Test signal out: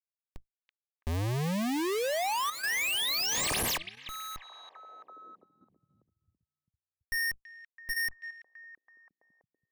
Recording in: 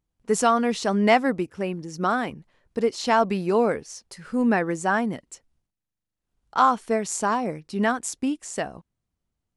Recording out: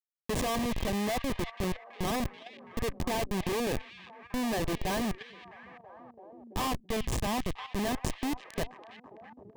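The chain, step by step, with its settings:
comparator with hysteresis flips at −23.5 dBFS
Butterworth band-reject 1,400 Hz, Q 5.1
echo through a band-pass that steps 331 ms, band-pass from 2,700 Hz, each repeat −0.7 octaves, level −7 dB
output level in coarse steps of 10 dB

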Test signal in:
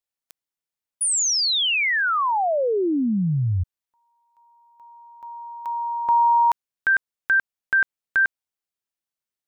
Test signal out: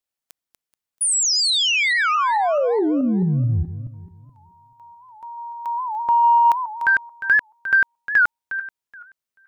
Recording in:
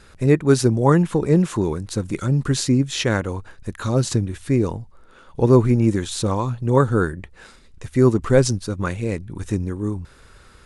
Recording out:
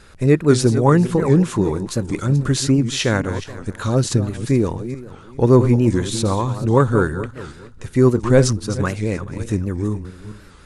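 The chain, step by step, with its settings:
feedback delay that plays each chunk backwards 215 ms, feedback 42%, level −11.5 dB
in parallel at −7.5 dB: soft clipping −8.5 dBFS
on the sum: wow of a warped record 78 rpm, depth 160 cents
level −1 dB

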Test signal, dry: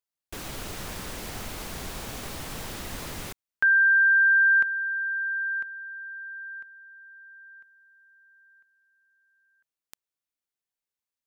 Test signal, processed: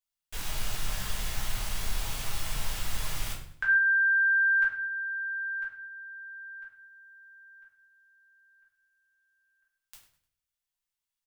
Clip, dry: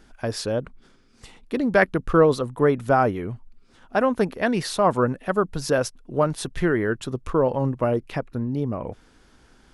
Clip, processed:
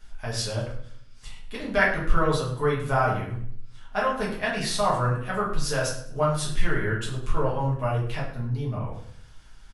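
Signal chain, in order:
parametric band 320 Hz −14.5 dB 2.4 octaves
repeating echo 101 ms, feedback 35%, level −16.5 dB
rectangular room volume 67 cubic metres, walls mixed, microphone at 1.4 metres
level −3.5 dB

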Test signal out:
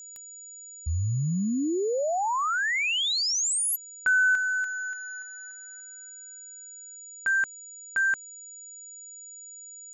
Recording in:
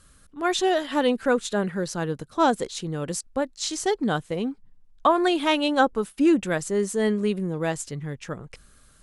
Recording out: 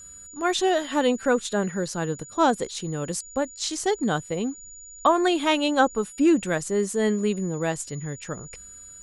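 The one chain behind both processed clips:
steady tone 6,900 Hz −42 dBFS

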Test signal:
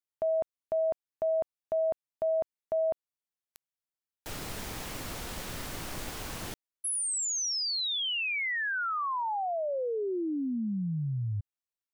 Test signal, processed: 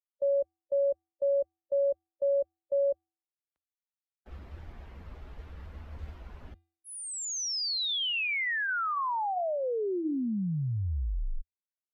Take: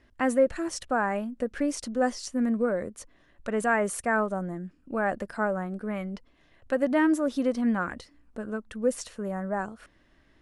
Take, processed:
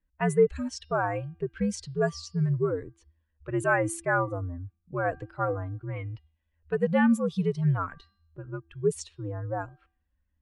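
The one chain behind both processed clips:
spectral dynamics exaggerated over time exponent 1.5
low-pass that shuts in the quiet parts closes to 1,600 Hz, open at −25 dBFS
hum removal 418.5 Hz, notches 13
frequency shifter −85 Hz
level +2 dB

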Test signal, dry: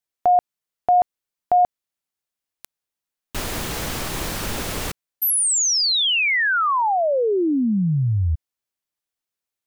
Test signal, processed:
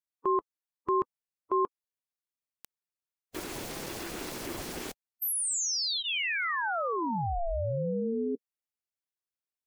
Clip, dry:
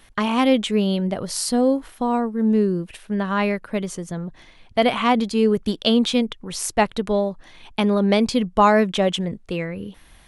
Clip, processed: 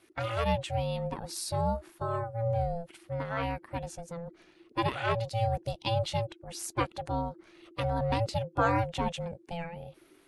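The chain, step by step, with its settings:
spectral magnitudes quantised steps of 15 dB
notch filter 3,400 Hz, Q 12
ring modulation 340 Hz
level −8 dB

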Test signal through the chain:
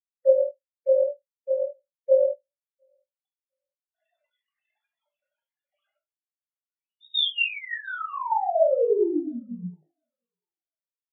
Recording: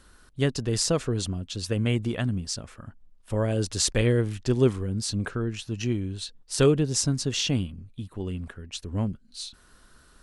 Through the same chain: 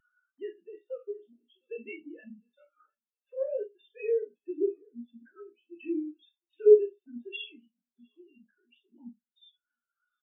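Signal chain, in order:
three sine waves on the formant tracks
high-pass filter 320 Hz 12 dB per octave
high-shelf EQ 2,400 Hz +12 dB
upward compression, threshold −27 dBFS
brickwall limiter −17.5 dBFS
sample-and-hold tremolo 3.5 Hz
spectral peaks only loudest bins 32
double-tracking delay 17 ms −6 dB
feedback echo with a high-pass in the loop 706 ms, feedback 47%, high-pass 550 Hz, level −15.5 dB
four-comb reverb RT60 0.36 s, combs from 26 ms, DRR 3 dB
every bin expanded away from the loudest bin 2.5 to 1
level +4.5 dB

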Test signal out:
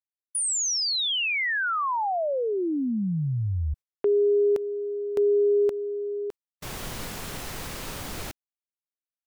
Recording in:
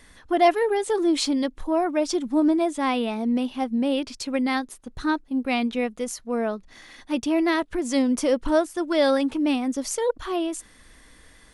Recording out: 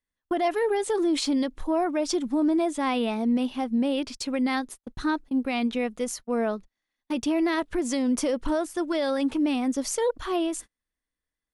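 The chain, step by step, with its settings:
noise gate −38 dBFS, range −38 dB
brickwall limiter −17.5 dBFS

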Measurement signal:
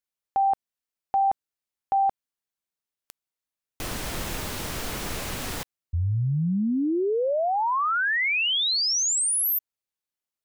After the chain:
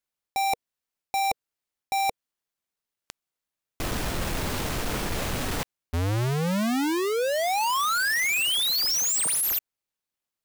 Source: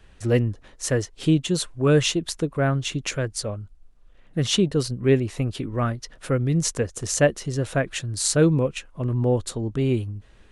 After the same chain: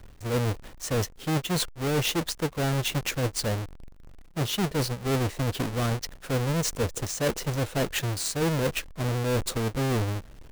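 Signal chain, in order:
each half-wave held at its own peak
dynamic equaliser 480 Hz, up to +5 dB, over −35 dBFS, Q 4.6
reversed playback
downward compressor 6 to 1, threshold −25 dBFS
reversed playback

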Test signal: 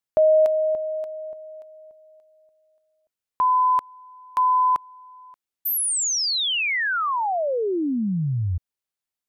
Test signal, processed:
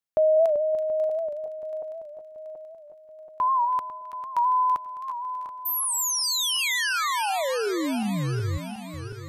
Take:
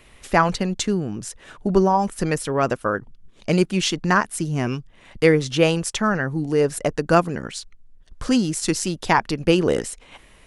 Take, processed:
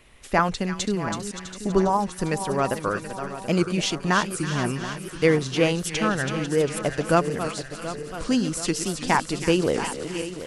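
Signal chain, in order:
feedback delay that plays each chunk backwards 365 ms, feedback 70%, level −10.5 dB
delay with a high-pass on its return 327 ms, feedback 50%, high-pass 1,900 Hz, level −7 dB
wow of a warped record 78 rpm, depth 100 cents
level −3.5 dB

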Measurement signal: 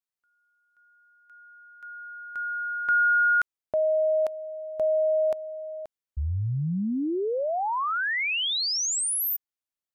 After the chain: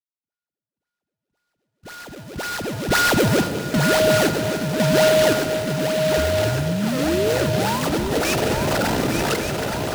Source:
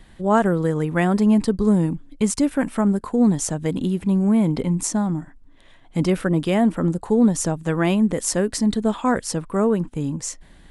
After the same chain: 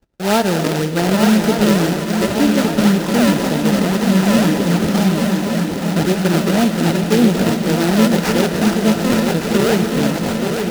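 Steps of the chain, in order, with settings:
noise gate −43 dBFS, range −29 dB
in parallel at 0 dB: brickwall limiter −14.5 dBFS
on the sum: sample-and-hold swept by an LFO 32×, swing 160% 1.9 Hz
notch comb filter 1,100 Hz
on a send: feedback echo with a long and a short gap by turns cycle 1,163 ms, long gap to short 3 to 1, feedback 60%, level −6 dB
on the sum: reverb whose tail is shaped and stops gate 430 ms flat, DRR 8 dB
short delay modulated by noise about 2,800 Hz, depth 0.055 ms
level −1 dB

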